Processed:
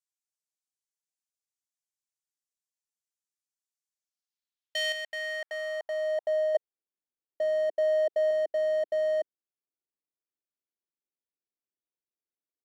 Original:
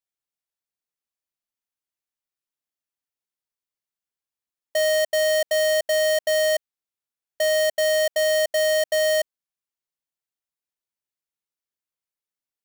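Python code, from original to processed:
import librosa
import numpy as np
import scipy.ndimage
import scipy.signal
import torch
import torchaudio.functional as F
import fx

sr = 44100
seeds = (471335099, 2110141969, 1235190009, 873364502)

y = fx.overload_stage(x, sr, gain_db=27.0, at=(4.92, 6.55))
y = fx.filter_sweep_bandpass(y, sr, from_hz=7100.0, to_hz=340.0, start_s=3.89, end_s=6.97, q=1.7)
y = fx.low_shelf_res(y, sr, hz=260.0, db=-13.5, q=1.5, at=(7.73, 8.31))
y = y * librosa.db_to_amplitude(2.0)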